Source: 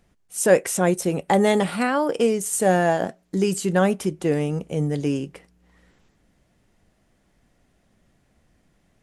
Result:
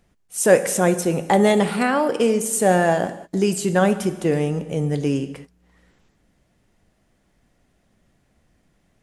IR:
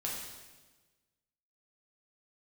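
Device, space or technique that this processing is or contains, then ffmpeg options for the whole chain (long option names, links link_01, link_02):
keyed gated reverb: -filter_complex "[0:a]asplit=3[link_01][link_02][link_03];[1:a]atrim=start_sample=2205[link_04];[link_02][link_04]afir=irnorm=-1:irlink=0[link_05];[link_03]apad=whole_len=398130[link_06];[link_05][link_06]sidechaingate=range=-33dB:threshold=-46dB:ratio=16:detection=peak,volume=-10dB[link_07];[link_01][link_07]amix=inputs=2:normalize=0"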